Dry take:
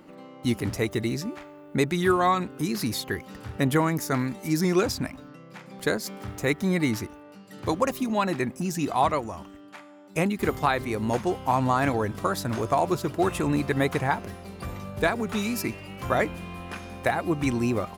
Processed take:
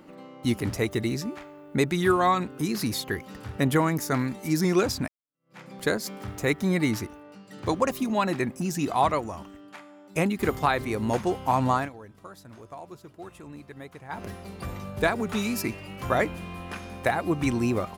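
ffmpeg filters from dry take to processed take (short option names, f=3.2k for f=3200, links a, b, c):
-filter_complex "[0:a]asettb=1/sr,asplit=3[a][b][c];[a]atrim=end=7.264[d];[b]atrim=start=7.26:end=7.9,asetpts=PTS-STARTPTS,afade=t=in:d=0.004:c=qsin,afade=t=out:st=0.636:d=0.004:c=qsin,equalizer=f=12k:t=o:w=0.25:g=-12.5[e];[c]atrim=start=7.896[f];[d][e]acrossfade=d=0.004:c1=hsin:c2=qsin[g];[g][f]acrossfade=d=0.004:c1=qsin:c2=hsin,asplit=4[h][i][j][k];[h]atrim=end=5.08,asetpts=PTS-STARTPTS,afade=t=out:st=5.076:d=0.004:c=hsin[l];[i]atrim=start=5.08:end=11.89,asetpts=PTS-STARTPTS,afade=t=in:d=0.51:c=exp,afade=t=out:st=6.67:d=0.14:silence=0.11885[m];[j]atrim=start=11.89:end=14.09,asetpts=PTS-STARTPTS,volume=-18.5dB[n];[k]atrim=start=14.09,asetpts=PTS-STARTPTS,afade=t=in:d=0.14:silence=0.11885[o];[l][m][n][o]concat=n=4:v=0:a=1"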